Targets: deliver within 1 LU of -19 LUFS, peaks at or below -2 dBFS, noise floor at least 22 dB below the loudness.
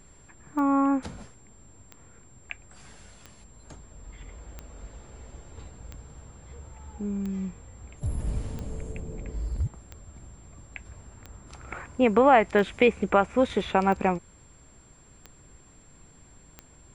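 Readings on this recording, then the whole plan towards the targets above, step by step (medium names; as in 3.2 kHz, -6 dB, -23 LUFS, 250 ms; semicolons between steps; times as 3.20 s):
clicks found 13; steady tone 7.4 kHz; tone level -57 dBFS; loudness -26.0 LUFS; peak level -6.5 dBFS; loudness target -19.0 LUFS
-> de-click; band-stop 7.4 kHz, Q 30; trim +7 dB; peak limiter -2 dBFS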